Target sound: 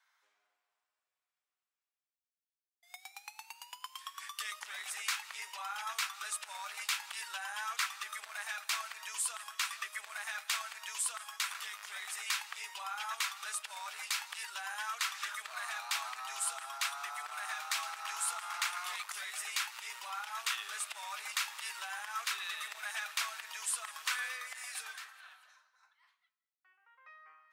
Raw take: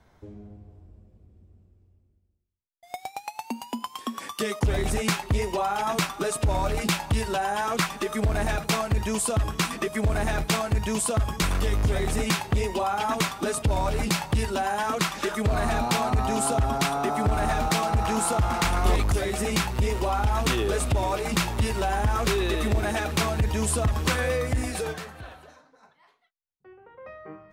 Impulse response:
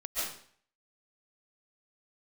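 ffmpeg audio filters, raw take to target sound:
-filter_complex "[0:a]highpass=f=1.2k:w=0.5412,highpass=f=1.2k:w=1.3066,asplit=2[a][b];[1:a]atrim=start_sample=2205,adelay=22[c];[b][c]afir=irnorm=-1:irlink=0,volume=-23.5dB[d];[a][d]amix=inputs=2:normalize=0,volume=-6.5dB"

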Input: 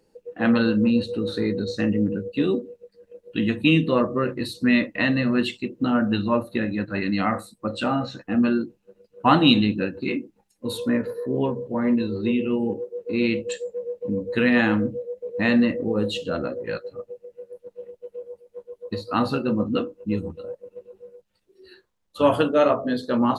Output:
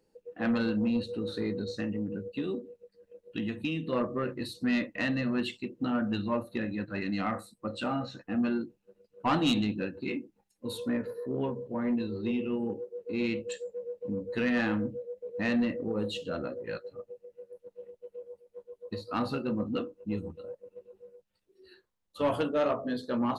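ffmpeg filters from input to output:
-filter_complex "[0:a]asettb=1/sr,asplit=3[a][b][c];[a]atrim=end=1.684[d];[b]atrim=start=1.68:end=3.93,asetpts=PTS-STARTPTS,afade=t=in:d=0.004:c=qsin,afade=t=out:st=2.246:d=0.004:c=qsin,acompressor=threshold=-21dB:ratio=6[e];[c]atrim=start=3.926[f];[d][e]acrossfade=d=0.004:c1=hsin:c2=qsin[g];[g][f]acrossfade=d=0.004:c1=qsin:c2=hsin,asoftclip=type=tanh:threshold=-12dB,volume=-7.5dB"

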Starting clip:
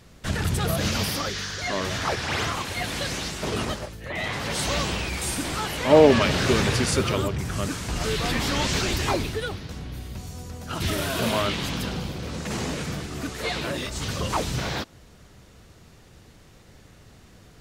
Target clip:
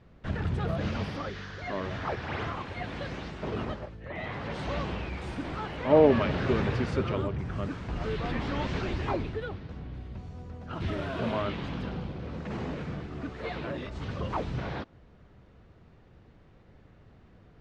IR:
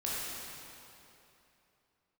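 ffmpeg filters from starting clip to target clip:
-af "lowpass=3.6k,highshelf=f=2.5k:g=-12,volume=-4.5dB"

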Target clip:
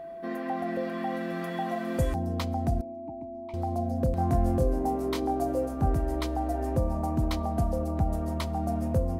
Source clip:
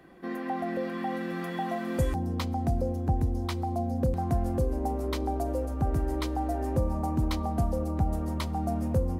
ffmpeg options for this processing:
-filter_complex "[0:a]asettb=1/sr,asplit=3[a][b][c];[a]atrim=end=2.814[d];[b]atrim=start=2.81:end=3.54,asetpts=PTS-STARTPTS,afade=t=in:d=0.004:c=qsin,afade=t=out:st=0.726:d=0.004:c=qsin,asplit=3[e][f][g];[e]bandpass=f=300:t=q:w=8,volume=0dB[h];[f]bandpass=f=870:t=q:w=8,volume=-6dB[i];[g]bandpass=f=2.24k:t=q:w=8,volume=-9dB[j];[h][i][j]amix=inputs=3:normalize=0[k];[c]atrim=start=3.536[l];[d][k]acrossfade=d=0.004:c1=hsin:c2=qsin[m];[m][l]acrossfade=d=0.004:c1=qsin:c2=hsin,aeval=exprs='val(0)+0.0126*sin(2*PI*670*n/s)':c=same,asettb=1/sr,asplit=3[n][o][p];[n]atrim=end=4.154[q];[o]atrim=start=4.15:end=5.94,asetpts=PTS-STARTPTS,afade=t=in:d=0.004:c=qsin,afade=t=out:st=1.786:d=0.004:c=qsin,asplit=2[r][s];[s]adelay=23,volume=-4.5dB[t];[r][t]amix=inputs=2:normalize=0,atrim=end_sample=78939[u];[p]atrim=start=5.936[v];[q][u]acrossfade=d=0.004:c1=hsin:c2=qsin[w];[w][v]acrossfade=d=0.004:c1=qsin:c2=hsin"

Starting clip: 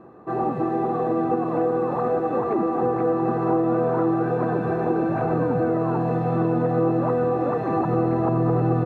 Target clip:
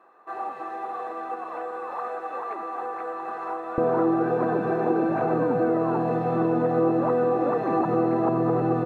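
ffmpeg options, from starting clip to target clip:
-af "asetnsamples=n=441:p=0,asendcmd='3.78 highpass f 200',highpass=1k"

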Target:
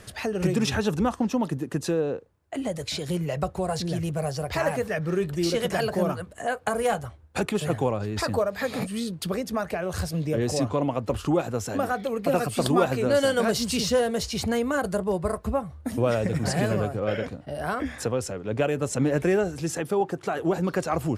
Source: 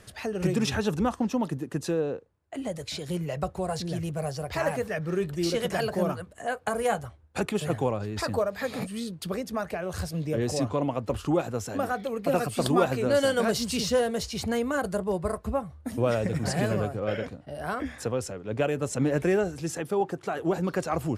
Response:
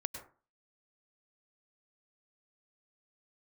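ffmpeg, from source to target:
-filter_complex "[0:a]asplit=2[a][b];[b]acompressor=threshold=-33dB:ratio=6,volume=-2dB[c];[a][c]amix=inputs=2:normalize=0,asettb=1/sr,asplit=3[d][e][f];[d]atrim=end=6.734[g];[e]atrim=start=6.73:end=7.58,asetpts=PTS-STARTPTS,afade=t=in:d=0.004:c=qsin,afade=t=out:st=0.846:d=0.004:c=qsin,volume=16.5dB,asoftclip=hard,volume=-16.5dB[h];[f]atrim=start=7.576[i];[g][h]acrossfade=d=0.004:c1=hsin:c2=qsin[j];[j][i]acrossfade=d=0.004:c1=qsin:c2=hsin"

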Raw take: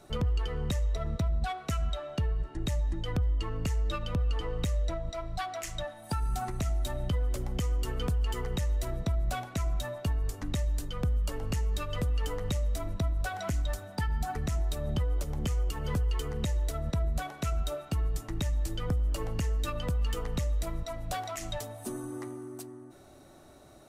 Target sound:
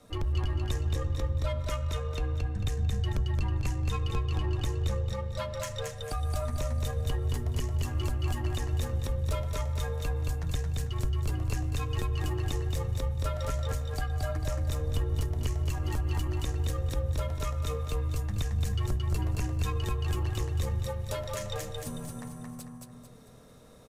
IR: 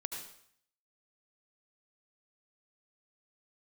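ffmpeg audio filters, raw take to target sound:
-af "aeval=exprs='if(lt(val(0),0),0.708*val(0),val(0))':c=same,aecho=1:1:223|446|669|892|1115:0.708|0.269|0.102|0.0388|0.0148,afreqshift=-130"

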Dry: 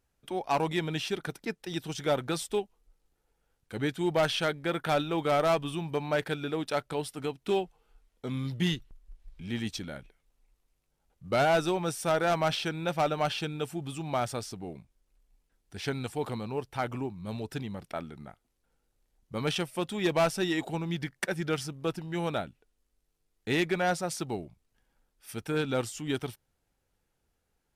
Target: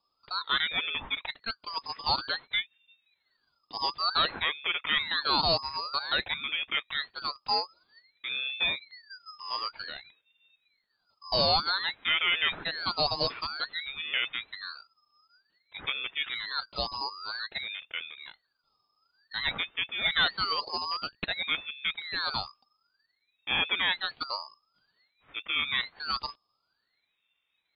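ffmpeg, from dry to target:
-af "lowpass=f=2.7k:t=q:w=0.5098,lowpass=f=2.7k:t=q:w=0.6013,lowpass=f=2.7k:t=q:w=0.9,lowpass=f=2.7k:t=q:w=2.563,afreqshift=-3200,aeval=exprs='val(0)*sin(2*PI*1200*n/s+1200*0.65/0.53*sin(2*PI*0.53*n/s))':c=same,volume=2.5dB"

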